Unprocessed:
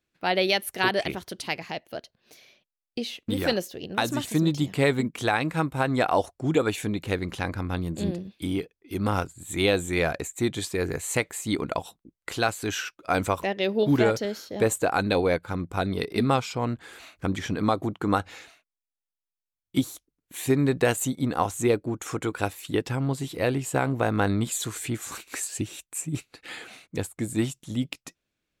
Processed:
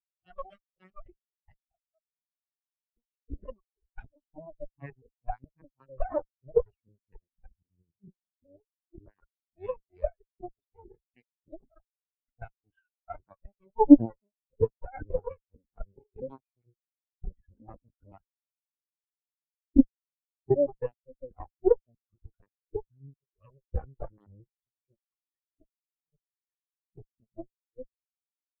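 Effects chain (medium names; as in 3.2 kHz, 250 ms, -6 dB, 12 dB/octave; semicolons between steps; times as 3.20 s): LPC vocoder at 8 kHz pitch kept; Chebyshev shaper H 4 -28 dB, 6 -16 dB, 8 -8 dB, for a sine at -6.5 dBFS; spectral contrast expander 4:1; trim +3 dB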